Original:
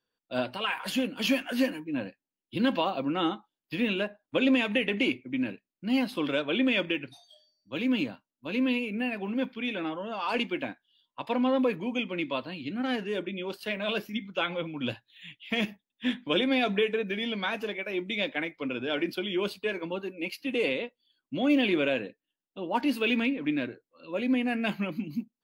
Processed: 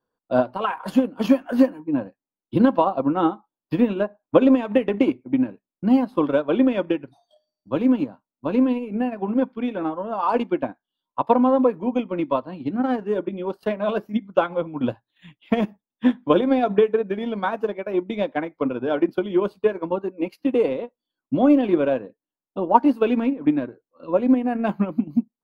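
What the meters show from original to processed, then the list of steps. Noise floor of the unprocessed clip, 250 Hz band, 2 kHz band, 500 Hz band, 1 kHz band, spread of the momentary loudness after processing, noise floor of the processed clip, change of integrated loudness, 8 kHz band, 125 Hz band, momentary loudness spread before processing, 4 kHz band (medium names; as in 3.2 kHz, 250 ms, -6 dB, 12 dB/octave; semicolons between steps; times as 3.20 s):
under -85 dBFS, +8.5 dB, -3.5 dB, +9.5 dB, +10.5 dB, 10 LU, under -85 dBFS, +7.5 dB, no reading, +7.5 dB, 10 LU, -8.0 dB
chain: transient shaper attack +7 dB, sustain -7 dB; resonant high shelf 1.6 kHz -13.5 dB, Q 1.5; trim +6 dB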